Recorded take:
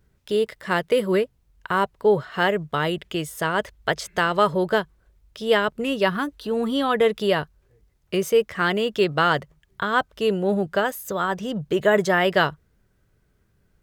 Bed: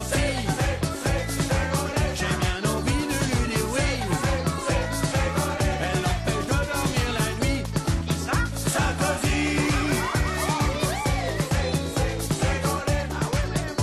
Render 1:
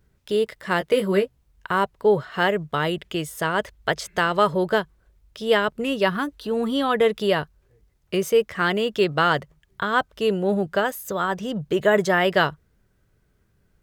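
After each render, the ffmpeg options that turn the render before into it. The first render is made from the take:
-filter_complex "[0:a]asettb=1/sr,asplit=3[s0][s1][s2];[s0]atrim=end=0.794[s3];[s1]atrim=start=0.79:end=1.67,asetpts=PTS-STARTPTS,afade=t=in:d=0.004:c=qsin,afade=t=out:st=0.876:d=0.004:c=qsin,asplit=2[s4][s5];[s5]adelay=15,volume=0.447[s6];[s4][s6]amix=inputs=2:normalize=0,atrim=end_sample=38808[s7];[s2]atrim=start=1.666[s8];[s3][s7]acrossfade=d=0.004:c1=hsin:c2=qsin[s9];[s9][s8]acrossfade=d=0.004:c1=qsin:c2=hsin"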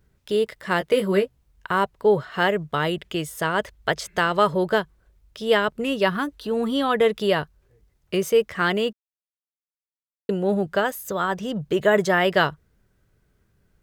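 -filter_complex "[0:a]asplit=3[s0][s1][s2];[s0]atrim=end=8.93,asetpts=PTS-STARTPTS,afade=t=out:st=8.926:d=0.004:c=hsin[s3];[s1]atrim=start=8.93:end=10.29,asetpts=PTS-STARTPTS,volume=0[s4];[s2]atrim=start=10.29,asetpts=PTS-STARTPTS,afade=t=in:d=0.004:c=hsin[s5];[s3][s4][s5]concat=n=3:v=0:a=1"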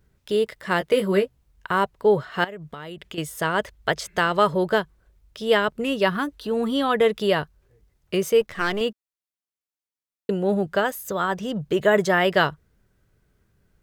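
-filter_complex "[0:a]asettb=1/sr,asplit=3[s0][s1][s2];[s0]atrim=end=2.444[s3];[s1]atrim=start=2.44:end=3.18,asetpts=PTS-STARTPTS,afade=t=in:d=0.004:c=qsin,afade=t=out:st=0.736:d=0.004:c=qsin,acompressor=threshold=0.0224:ratio=8:attack=3.2:release=140:knee=1:detection=peak[s4];[s2]atrim=start=3.176[s5];[s3][s4]acrossfade=d=0.004:c1=hsin:c2=qsin[s6];[s6][s5]acrossfade=d=0.004:c1=qsin:c2=hsin,asettb=1/sr,asplit=3[s7][s8][s9];[s7]atrim=end=8.414[s10];[s8]atrim=start=8.41:end=8.81,asetpts=PTS-STARTPTS,afade=t=in:d=0.004:c=qsin,afade=t=out:st=0.396:d=0.004:c=qsin,aeval=exprs='if(lt(val(0),0),0.447*val(0),val(0))':c=same[s11];[s9]atrim=start=8.806[s12];[s10][s11]acrossfade=d=0.004:c1=hsin:c2=qsin[s13];[s13][s12]acrossfade=d=0.004:c1=qsin:c2=hsin"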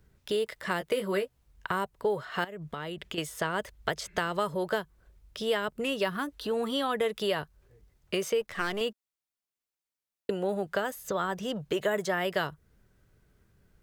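-filter_complex "[0:a]acrossover=split=440|6900[s0][s1][s2];[s0]acompressor=threshold=0.0141:ratio=4[s3];[s1]acompressor=threshold=0.0355:ratio=4[s4];[s2]acompressor=threshold=0.00447:ratio=4[s5];[s3][s4][s5]amix=inputs=3:normalize=0"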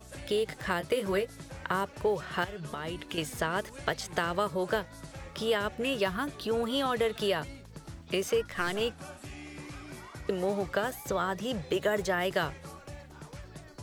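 -filter_complex "[1:a]volume=0.0891[s0];[0:a][s0]amix=inputs=2:normalize=0"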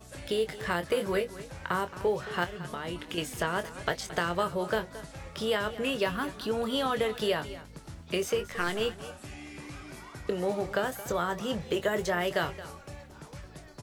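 -filter_complex "[0:a]asplit=2[s0][s1];[s1]adelay=23,volume=0.316[s2];[s0][s2]amix=inputs=2:normalize=0,aecho=1:1:222:0.168"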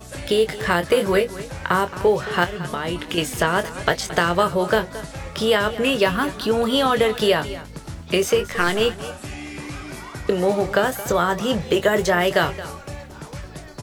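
-af "volume=3.35"

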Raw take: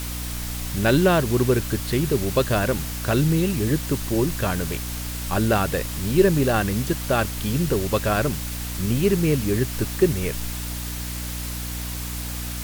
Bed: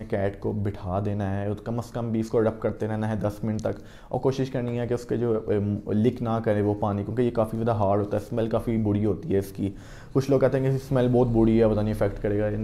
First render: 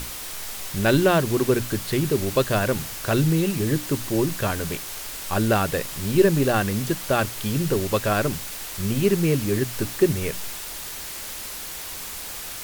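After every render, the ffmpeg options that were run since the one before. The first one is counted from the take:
-af "bandreject=f=60:t=h:w=6,bandreject=f=120:t=h:w=6,bandreject=f=180:t=h:w=6,bandreject=f=240:t=h:w=6,bandreject=f=300:t=h:w=6"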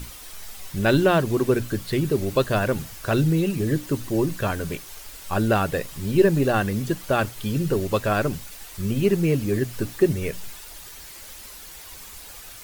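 -af "afftdn=nr=9:nf=-35"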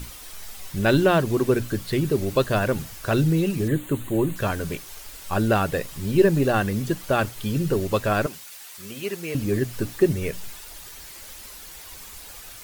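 -filter_complex "[0:a]asettb=1/sr,asplit=3[s0][s1][s2];[s0]atrim=end=3.684[s3];[s1]atrim=start=3.68:end=4.36,asetpts=PTS-STARTPTS,afade=t=in:d=0.004:c=qsin,afade=t=out:st=0.676:d=0.004:c=qsin,asuperstop=centerf=5300:order=4:qfactor=1.7[s4];[s2]atrim=start=4.356[s5];[s3][s4]acrossfade=d=0.004:c1=hsin:c2=qsin[s6];[s6][s5]acrossfade=d=0.004:c1=qsin:c2=hsin,asettb=1/sr,asplit=3[s7][s8][s9];[s7]atrim=end=8.264[s10];[s8]atrim=start=8.26:end=9.35,asetpts=PTS-STARTPTS,afade=t=in:d=0.004:c=qsin,afade=t=out:st=1.086:d=0.004:c=qsin,highpass=f=1100:p=1[s11];[s9]atrim=start=9.346[s12];[s10][s11]acrossfade=d=0.004:c1=hsin:c2=qsin[s13];[s13][s12]acrossfade=d=0.004:c1=qsin:c2=hsin"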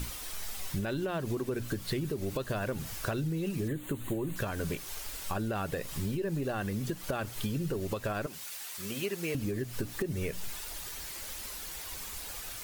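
-af "alimiter=limit=0.141:level=0:latency=1:release=187,acompressor=threshold=0.0316:ratio=6"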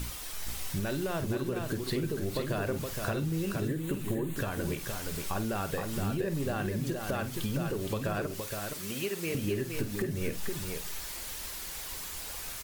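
-filter_complex "[0:a]asplit=2[s0][s1];[s1]adelay=49,volume=0.266[s2];[s0][s2]amix=inputs=2:normalize=0,aecho=1:1:468:0.562"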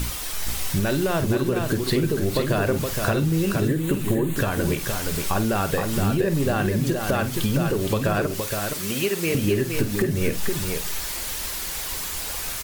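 -af "volume=3.16"

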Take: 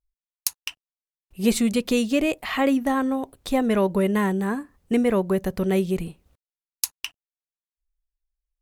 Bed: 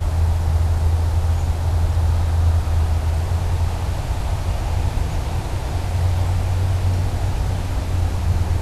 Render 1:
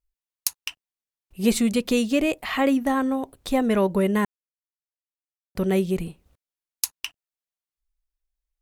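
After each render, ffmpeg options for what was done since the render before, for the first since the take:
-filter_complex "[0:a]asplit=3[s0][s1][s2];[s0]atrim=end=4.25,asetpts=PTS-STARTPTS,afade=t=out:st=4.246:d=0.004:c=hsin[s3];[s1]atrim=start=4.25:end=5.55,asetpts=PTS-STARTPTS,volume=0[s4];[s2]atrim=start=5.55,asetpts=PTS-STARTPTS,afade=t=in:d=0.004:c=hsin[s5];[s3][s4][s5]concat=n=3:v=0:a=1"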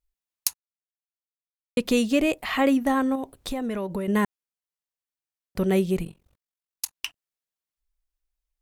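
-filter_complex "[0:a]asettb=1/sr,asplit=3[s0][s1][s2];[s0]atrim=end=3.154[s3];[s1]atrim=start=3.15:end=4.08,asetpts=PTS-STARTPTS,afade=t=in:d=0.004:c=qsin,afade=t=out:st=0.926:d=0.004:c=qsin,acompressor=threshold=0.0562:ratio=10:attack=3.2:release=140:knee=1:detection=peak[s4];[s2]atrim=start=4.076[s5];[s3][s4]acrossfade=d=0.004:c1=hsin:c2=qsin[s6];[s6][s5]acrossfade=d=0.004:c1=qsin:c2=hsin,asplit=3[s7][s8][s9];[s7]afade=t=out:st=6.03:d=0.02[s10];[s8]tremolo=f=45:d=0.947,afade=t=in:st=6.03:d=0.02,afade=t=out:st=6.94:d=0.02[s11];[s9]afade=t=in:st=6.94:d=0.02[s12];[s10][s11][s12]amix=inputs=3:normalize=0,asplit=3[s13][s14][s15];[s13]atrim=end=0.54,asetpts=PTS-STARTPTS,afade=t=out:st=0.536:d=0.004:c=hsin[s16];[s14]atrim=start=0.54:end=1.77,asetpts=PTS-STARTPTS,volume=0[s17];[s15]atrim=start=1.77,asetpts=PTS-STARTPTS,afade=t=in:d=0.004:c=hsin[s18];[s16][s17][s18]concat=n=3:v=0:a=1"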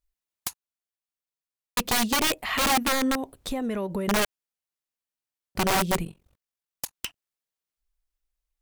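-af "aeval=exprs='(mod(7.5*val(0)+1,2)-1)/7.5':c=same"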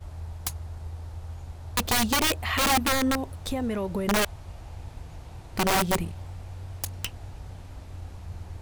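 -filter_complex "[1:a]volume=0.106[s0];[0:a][s0]amix=inputs=2:normalize=0"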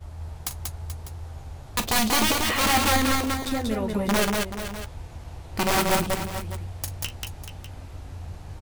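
-filter_complex "[0:a]asplit=2[s0][s1];[s1]adelay=14,volume=0.299[s2];[s0][s2]amix=inputs=2:normalize=0,aecho=1:1:41|187|432|599:0.251|0.708|0.282|0.2"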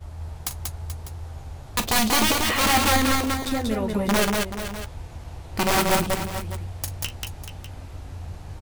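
-af "volume=1.19"

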